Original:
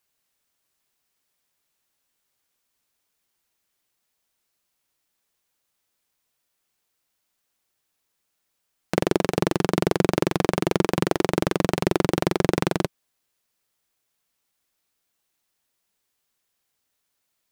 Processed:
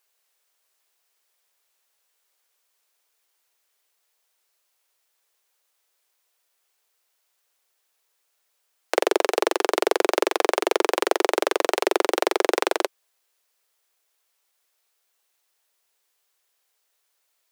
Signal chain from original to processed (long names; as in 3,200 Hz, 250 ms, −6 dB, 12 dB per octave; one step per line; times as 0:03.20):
Butterworth high-pass 390 Hz 36 dB per octave
level +4 dB